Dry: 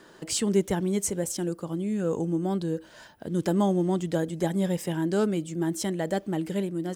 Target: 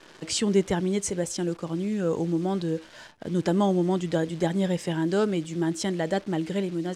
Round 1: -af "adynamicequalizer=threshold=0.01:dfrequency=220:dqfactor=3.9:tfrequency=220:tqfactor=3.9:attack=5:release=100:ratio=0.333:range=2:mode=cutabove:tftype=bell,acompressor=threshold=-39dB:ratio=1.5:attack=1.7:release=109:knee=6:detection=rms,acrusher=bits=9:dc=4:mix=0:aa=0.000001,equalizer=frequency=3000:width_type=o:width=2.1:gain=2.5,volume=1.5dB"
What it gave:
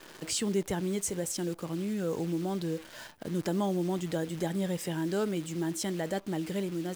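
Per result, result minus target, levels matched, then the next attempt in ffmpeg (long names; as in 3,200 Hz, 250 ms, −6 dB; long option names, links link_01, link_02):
downward compressor: peak gain reduction +8.5 dB; 8,000 Hz band +4.0 dB
-af "adynamicequalizer=threshold=0.01:dfrequency=220:dqfactor=3.9:tfrequency=220:tqfactor=3.9:attack=5:release=100:ratio=0.333:range=2:mode=cutabove:tftype=bell,acrusher=bits=9:dc=4:mix=0:aa=0.000001,equalizer=frequency=3000:width_type=o:width=2.1:gain=2.5,volume=1.5dB"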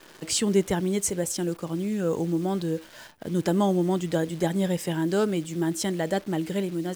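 8,000 Hz band +3.5 dB
-af "adynamicequalizer=threshold=0.01:dfrequency=220:dqfactor=3.9:tfrequency=220:tqfactor=3.9:attack=5:release=100:ratio=0.333:range=2:mode=cutabove:tftype=bell,acrusher=bits=9:dc=4:mix=0:aa=0.000001,lowpass=7100,equalizer=frequency=3000:width_type=o:width=2.1:gain=2.5,volume=1.5dB"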